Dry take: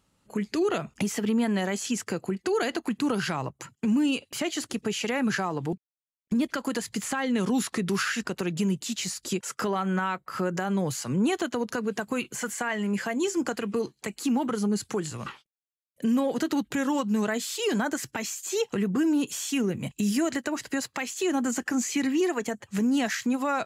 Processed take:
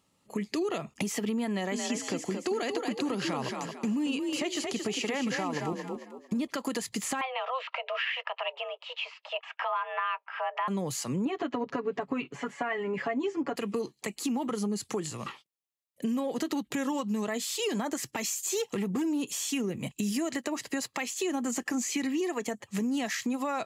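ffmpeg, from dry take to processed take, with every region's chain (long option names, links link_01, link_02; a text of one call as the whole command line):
ffmpeg -i in.wav -filter_complex "[0:a]asettb=1/sr,asplit=3[link_01][link_02][link_03];[link_01]atrim=end=1.494[link_04];[link_02]atrim=start=1.49:end=6.51,asetpts=PTS-STARTPTS,afade=type=in:duration=0.004:curve=qsin,afade=type=out:start_time=5.016:duration=0.004:curve=qsin,asplit=5[link_05][link_06][link_07][link_08][link_09];[link_06]adelay=225,afreqshift=38,volume=-6dB[link_10];[link_07]adelay=450,afreqshift=76,volume=-15.4dB[link_11];[link_08]adelay=675,afreqshift=114,volume=-24.7dB[link_12];[link_09]adelay=900,afreqshift=152,volume=-34.1dB[link_13];[link_05][link_10][link_11][link_12][link_13]amix=inputs=5:normalize=0,atrim=end_sample=221382,acrossover=split=9100[link_14][link_15];[link_15]acompressor=threshold=-57dB:ratio=4:attack=1:release=60[link_16];[link_14][link_16]amix=inputs=2:normalize=0[link_17];[link_03]atrim=start=6.506[link_18];[link_04][link_17]acrossfade=duration=0.004:curve1=hsin:curve2=qsin[link_19];[link_19][link_18]acrossfade=duration=0.004:curve1=qsin:curve2=hsin,asettb=1/sr,asplit=3[link_20][link_21][link_22];[link_20]atrim=end=7.214[link_23];[link_21]atrim=start=7.21:end=10.68,asetpts=PTS-STARTPTS,afade=type=in:duration=0.004:curve=qsin,afade=type=out:start_time=3.466:duration=0.004:curve=qsin,highpass=frequency=360:width=0.5412,highpass=frequency=360:width=1.3066,equalizer=frequency=470:width_type=q:width=4:gain=-6,equalizer=frequency=700:width_type=q:width=4:gain=9,equalizer=frequency=1000:width_type=q:width=4:gain=5,equalizer=frequency=1700:width_type=q:width=4:gain=-3,equalizer=frequency=2500:width_type=q:width=4:gain=10,lowpass=frequency=2700:width=0.5412,lowpass=frequency=2700:width=1.3066,afreqshift=260[link_24];[link_22]atrim=start=10.676[link_25];[link_23][link_24]acrossfade=duration=0.004:curve1=hsin:curve2=qsin[link_26];[link_26][link_25]acrossfade=duration=0.004:curve1=qsin:curve2=hsin,asettb=1/sr,asplit=3[link_27][link_28][link_29];[link_27]atrim=end=11.254[link_30];[link_28]atrim=start=11.25:end=13.56,asetpts=PTS-STARTPTS,afade=type=in:duration=0.004:curve=qsin,afade=type=out:start_time=2.306:duration=0.004:curve=qsin,lowpass=2200,aecho=1:1:7.1:0.9,atrim=end_sample=101871[link_31];[link_29]atrim=start=13.556[link_32];[link_30][link_31]acrossfade=duration=0.004:curve1=hsin:curve2=qsin[link_33];[link_33][link_32]acrossfade=duration=0.004:curve1=qsin:curve2=hsin,asettb=1/sr,asplit=3[link_34][link_35][link_36];[link_34]atrim=end=18.164[link_37];[link_35]atrim=start=18.16:end=19.02,asetpts=PTS-STARTPTS,afade=type=in:duration=0.004:curve=qsin,afade=type=out:start_time=0.856:duration=0.004:curve=qsin,highshelf=frequency=6100:gain=5,asoftclip=type=hard:threshold=-22dB[link_38];[link_36]atrim=start=19.016[link_39];[link_37][link_38]acrossfade=duration=0.004:curve1=hsin:curve2=qsin[link_40];[link_40][link_39]acrossfade=duration=0.004:curve1=qsin:curve2=hsin,highpass=frequency=160:poles=1,bandreject=frequency=1500:width=5.3,acompressor=threshold=-27dB:ratio=6" out.wav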